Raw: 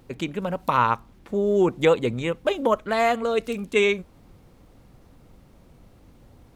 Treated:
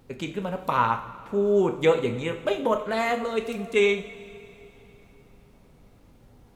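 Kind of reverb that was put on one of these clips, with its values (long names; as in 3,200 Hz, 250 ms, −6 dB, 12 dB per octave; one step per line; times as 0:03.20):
coupled-rooms reverb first 0.51 s, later 3.3 s, from −16 dB, DRR 4.5 dB
level −3.5 dB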